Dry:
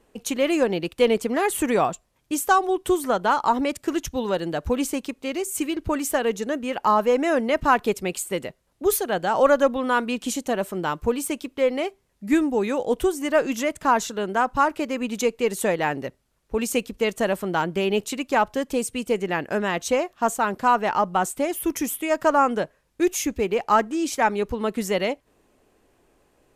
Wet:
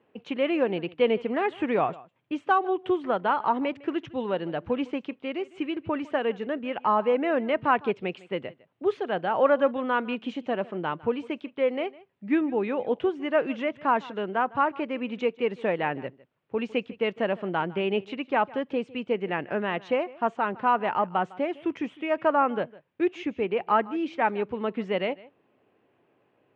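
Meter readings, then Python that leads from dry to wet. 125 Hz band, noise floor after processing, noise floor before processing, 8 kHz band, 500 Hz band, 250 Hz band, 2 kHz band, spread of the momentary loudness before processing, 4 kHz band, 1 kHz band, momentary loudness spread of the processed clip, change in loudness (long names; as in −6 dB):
−4.5 dB, −68 dBFS, −66 dBFS, below −35 dB, −3.5 dB, −4.0 dB, −4.0 dB, 7 LU, −6.5 dB, −4.0 dB, 8 LU, −4.0 dB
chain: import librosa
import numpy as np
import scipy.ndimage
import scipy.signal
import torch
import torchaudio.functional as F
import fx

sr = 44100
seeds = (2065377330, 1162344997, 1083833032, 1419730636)

y = scipy.signal.sosfilt(scipy.signal.ellip(3, 1.0, 60, [110.0, 2900.0], 'bandpass', fs=sr, output='sos'), x)
y = y + 10.0 ** (-21.0 / 20.0) * np.pad(y, (int(155 * sr / 1000.0), 0))[:len(y)]
y = F.gain(torch.from_numpy(y), -3.5).numpy()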